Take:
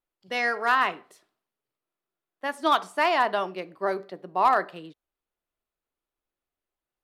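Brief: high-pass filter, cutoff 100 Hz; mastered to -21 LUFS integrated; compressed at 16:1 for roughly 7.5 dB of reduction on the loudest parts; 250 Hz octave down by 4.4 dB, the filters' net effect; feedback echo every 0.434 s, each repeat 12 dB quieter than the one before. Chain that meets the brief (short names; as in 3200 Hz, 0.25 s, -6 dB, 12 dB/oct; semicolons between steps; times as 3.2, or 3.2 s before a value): HPF 100 Hz; bell 250 Hz -6.5 dB; compressor 16:1, threshold -23 dBFS; feedback echo 0.434 s, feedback 25%, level -12 dB; gain +10 dB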